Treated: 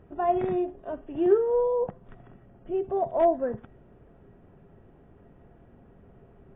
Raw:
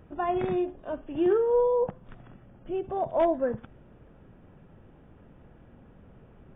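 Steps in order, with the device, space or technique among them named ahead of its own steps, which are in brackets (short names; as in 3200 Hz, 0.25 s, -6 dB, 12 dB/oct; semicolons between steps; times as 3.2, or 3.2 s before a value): inside a helmet (high shelf 3300 Hz -9.5 dB; small resonant body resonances 400/690/1900 Hz, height 9 dB, ringing for 90 ms); gain -1.5 dB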